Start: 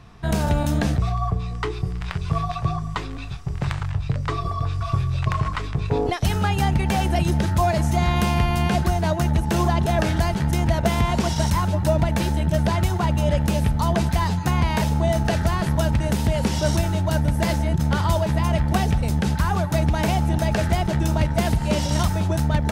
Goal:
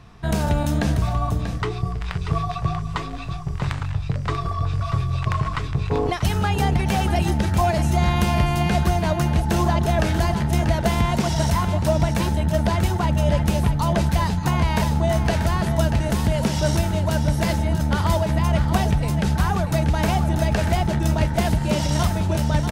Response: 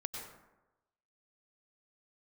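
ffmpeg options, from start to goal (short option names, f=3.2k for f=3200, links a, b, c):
-af "aecho=1:1:638:0.355"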